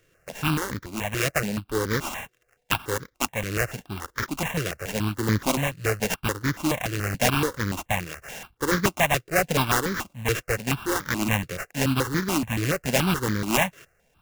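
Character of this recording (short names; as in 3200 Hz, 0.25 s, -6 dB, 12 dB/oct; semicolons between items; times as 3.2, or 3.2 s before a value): a buzz of ramps at a fixed pitch in blocks of 16 samples; tremolo triangle 1.7 Hz, depth 35%; aliases and images of a low sample rate 4400 Hz, jitter 20%; notches that jump at a steady rate 7 Hz 230–2700 Hz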